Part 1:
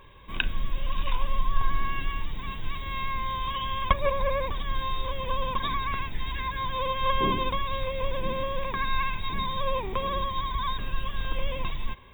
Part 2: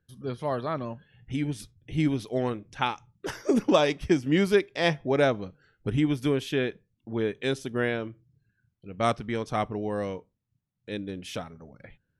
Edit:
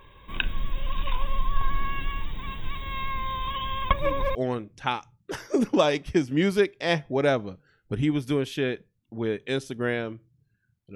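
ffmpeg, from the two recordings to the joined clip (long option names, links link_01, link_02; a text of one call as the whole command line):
ffmpeg -i cue0.wav -i cue1.wav -filter_complex "[1:a]asplit=2[link_01][link_02];[0:a]apad=whole_dur=10.95,atrim=end=10.95,atrim=end=4.352[link_03];[link_02]atrim=start=2.298:end=8.9[link_04];[link_01]atrim=start=1.77:end=2.3,asetpts=PTS-STARTPTS,volume=-14dB,afade=type=in:duration=0.004:curve=hsin,afade=type=out:start_time=0.526:duration=0.004:curve=hsin,adelay=3820[link_05];[link_03][link_04]acrossfade=duration=0.004:curve1=hsin:curve2=hsin[link_06];[link_06][link_05]amix=inputs=2:normalize=0" out.wav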